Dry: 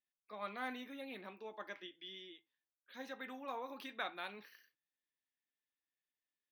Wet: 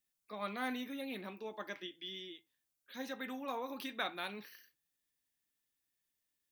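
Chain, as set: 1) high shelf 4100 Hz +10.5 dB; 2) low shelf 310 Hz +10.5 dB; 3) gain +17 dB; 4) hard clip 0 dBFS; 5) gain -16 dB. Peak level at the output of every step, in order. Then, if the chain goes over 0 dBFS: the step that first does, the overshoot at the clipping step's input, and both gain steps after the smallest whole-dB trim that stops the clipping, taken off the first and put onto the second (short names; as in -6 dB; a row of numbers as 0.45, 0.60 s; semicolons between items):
-23.0, -23.0, -6.0, -6.0, -22.0 dBFS; no overload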